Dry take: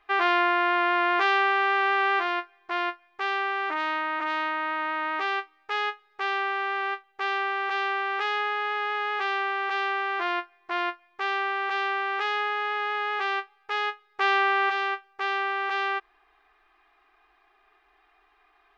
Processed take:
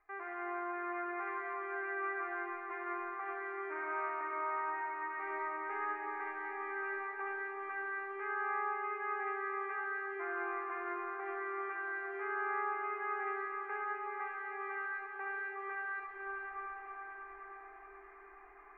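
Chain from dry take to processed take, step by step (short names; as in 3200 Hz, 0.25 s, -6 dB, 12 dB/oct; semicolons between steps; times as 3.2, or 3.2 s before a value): Chebyshev low-pass 2200 Hz, order 5; reverse; compressor 10:1, threshold -37 dBFS, peak gain reduction 18.5 dB; reverse; limiter -36 dBFS, peak gain reduction 9.5 dB; swelling echo 0.107 s, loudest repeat 5, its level -16.5 dB; reverb RT60 6.0 s, pre-delay 20 ms, DRR -3 dB; gain +1 dB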